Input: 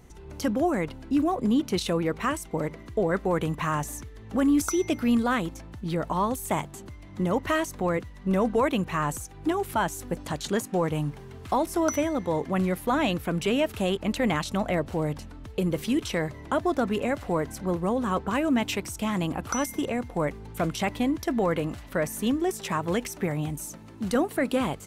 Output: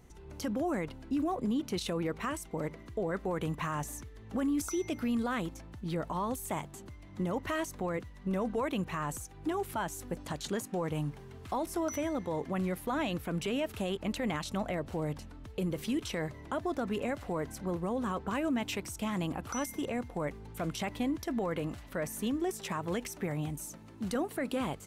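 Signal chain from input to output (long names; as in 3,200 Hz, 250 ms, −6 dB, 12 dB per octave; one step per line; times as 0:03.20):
brickwall limiter −19.5 dBFS, peak gain reduction 8 dB
level −5.5 dB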